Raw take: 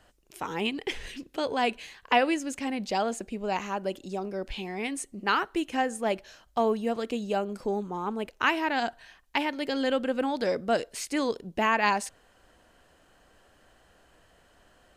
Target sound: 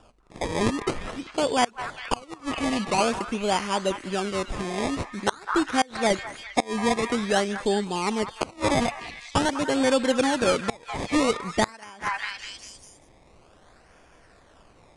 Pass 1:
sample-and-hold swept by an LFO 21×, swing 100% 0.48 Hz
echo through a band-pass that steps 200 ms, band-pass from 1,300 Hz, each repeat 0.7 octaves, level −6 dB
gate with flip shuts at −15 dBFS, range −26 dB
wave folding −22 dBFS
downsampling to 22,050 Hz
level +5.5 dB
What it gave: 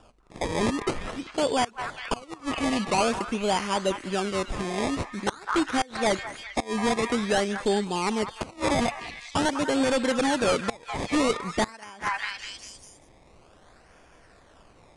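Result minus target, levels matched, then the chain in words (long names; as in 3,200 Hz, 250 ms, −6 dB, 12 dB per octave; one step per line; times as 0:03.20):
wave folding: distortion +24 dB
sample-and-hold swept by an LFO 21×, swing 100% 0.48 Hz
echo through a band-pass that steps 200 ms, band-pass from 1,300 Hz, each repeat 0.7 octaves, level −6 dB
gate with flip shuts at −15 dBFS, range −26 dB
wave folding −15 dBFS
downsampling to 22,050 Hz
level +5.5 dB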